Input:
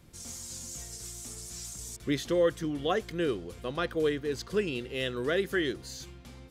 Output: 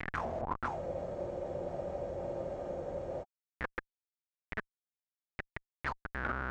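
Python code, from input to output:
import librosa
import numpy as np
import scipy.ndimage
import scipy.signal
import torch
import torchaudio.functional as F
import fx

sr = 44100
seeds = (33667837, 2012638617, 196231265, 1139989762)

y = fx.quant_dither(x, sr, seeds[0], bits=10, dither='none')
y = fx.low_shelf(y, sr, hz=110.0, db=8.0)
y = fx.gate_flip(y, sr, shuts_db=-30.0, range_db=-30)
y = y + 10.0 ** (-17.0 / 20.0) * np.pad(y, (int(138 * sr / 1000.0), 0))[:len(y)]
y = fx.schmitt(y, sr, flips_db=-48.5)
y = fx.tilt_eq(y, sr, slope=2.0)
y = fx.spec_freeze(y, sr, seeds[1], at_s=0.73, hold_s=2.49)
y = fx.envelope_lowpass(y, sr, base_hz=200.0, top_hz=2300.0, q=7.1, full_db=-35.0, direction='down')
y = y * 10.0 ** (14.5 / 20.0)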